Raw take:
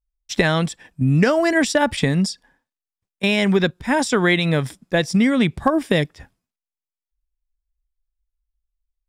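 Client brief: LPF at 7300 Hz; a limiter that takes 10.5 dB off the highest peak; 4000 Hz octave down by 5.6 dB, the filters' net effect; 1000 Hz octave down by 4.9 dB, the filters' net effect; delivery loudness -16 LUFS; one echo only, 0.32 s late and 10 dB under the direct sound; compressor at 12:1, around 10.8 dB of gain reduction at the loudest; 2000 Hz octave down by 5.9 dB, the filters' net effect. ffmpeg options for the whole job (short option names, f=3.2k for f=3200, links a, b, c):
-af "lowpass=7.3k,equalizer=f=1k:t=o:g=-5,equalizer=f=2k:t=o:g=-4.5,equalizer=f=4k:t=o:g=-5,acompressor=threshold=-24dB:ratio=12,alimiter=limit=-23dB:level=0:latency=1,aecho=1:1:320:0.316,volume=16.5dB"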